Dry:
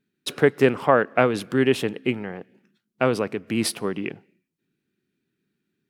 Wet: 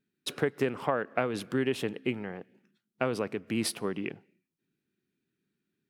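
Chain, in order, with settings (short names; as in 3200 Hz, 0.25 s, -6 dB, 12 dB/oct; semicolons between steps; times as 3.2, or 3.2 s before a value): compressor, threshold -18 dBFS, peak gain reduction 7.5 dB; gain -5.5 dB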